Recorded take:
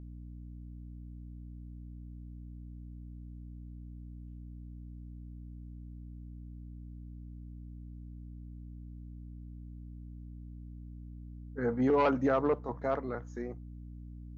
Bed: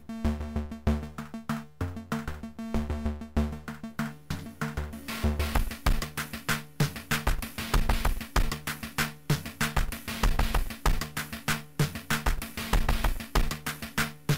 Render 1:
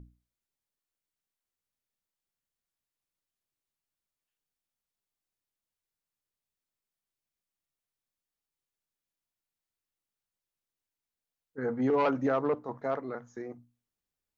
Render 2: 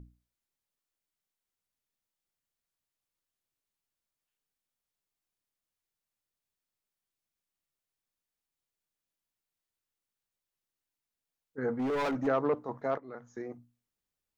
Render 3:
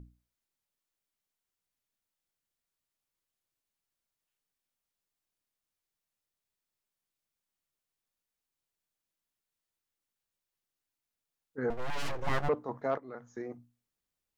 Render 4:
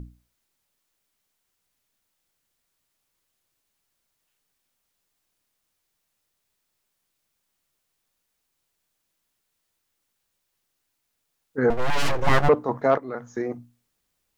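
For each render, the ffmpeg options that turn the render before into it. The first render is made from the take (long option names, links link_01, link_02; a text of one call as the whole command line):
ffmpeg -i in.wav -af "bandreject=frequency=60:width_type=h:width=6,bandreject=frequency=120:width_type=h:width=6,bandreject=frequency=180:width_type=h:width=6,bandreject=frequency=240:width_type=h:width=6,bandreject=frequency=300:width_type=h:width=6" out.wav
ffmpeg -i in.wav -filter_complex "[0:a]asplit=3[link_01][link_02][link_03];[link_01]afade=type=out:start_time=11.76:duration=0.02[link_04];[link_02]asoftclip=type=hard:threshold=-28.5dB,afade=type=in:start_time=11.76:duration=0.02,afade=type=out:start_time=12.26:duration=0.02[link_05];[link_03]afade=type=in:start_time=12.26:duration=0.02[link_06];[link_04][link_05][link_06]amix=inputs=3:normalize=0,asplit=2[link_07][link_08];[link_07]atrim=end=12.98,asetpts=PTS-STARTPTS,afade=type=out:start_time=12.976:duration=0.004:curve=hsin:silence=0.16788[link_09];[link_08]atrim=start=12.98,asetpts=PTS-STARTPTS,afade=type=in:duration=0.41:silence=0.16788[link_10];[link_09][link_10]concat=n=2:v=0:a=1" out.wav
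ffmpeg -i in.wav -filter_complex "[0:a]asettb=1/sr,asplit=3[link_01][link_02][link_03];[link_01]atrim=end=11.704[link_04];[link_02]atrim=start=11.7:end=12.49,asetpts=PTS-STARTPTS,afade=type=in:duration=0.004:curve=qsin,afade=type=out:start_time=0.786:duration=0.004:curve=qsin,aeval=exprs='abs(val(0))':channel_layout=same[link_05];[link_03]atrim=start=12.486[link_06];[link_04][link_05]acrossfade=duration=0.004:curve1=hsin:curve2=qsin[link_07];[link_07][link_06]acrossfade=duration=0.004:curve1=qsin:curve2=hsin" out.wav
ffmpeg -i in.wav -af "volume=12dB" out.wav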